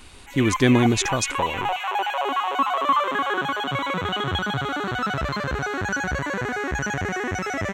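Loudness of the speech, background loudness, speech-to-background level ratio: -21.5 LUFS, -25.0 LUFS, 3.5 dB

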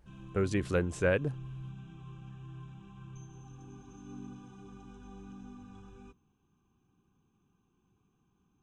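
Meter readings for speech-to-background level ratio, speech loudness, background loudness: 17.0 dB, -31.5 LUFS, -48.5 LUFS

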